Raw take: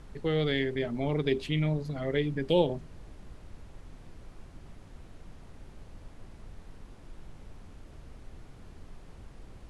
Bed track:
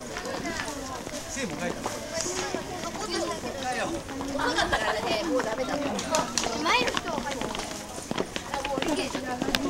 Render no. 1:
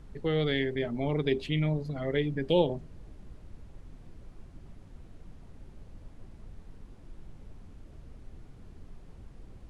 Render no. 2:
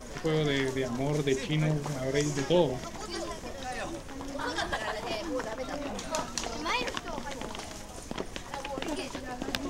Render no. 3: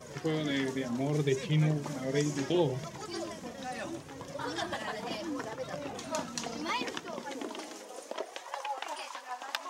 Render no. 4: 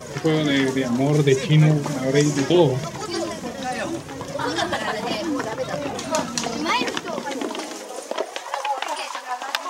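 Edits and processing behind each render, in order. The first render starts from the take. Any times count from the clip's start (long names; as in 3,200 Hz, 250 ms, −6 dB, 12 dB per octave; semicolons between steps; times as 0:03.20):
broadband denoise 6 dB, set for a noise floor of −51 dBFS
mix in bed track −7 dB
high-pass filter sweep 140 Hz → 940 Hz, 0:06.55–0:08.86; flanger 0.7 Hz, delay 1.7 ms, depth 2.6 ms, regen −28%
level +12 dB; brickwall limiter −3 dBFS, peak gain reduction 1.5 dB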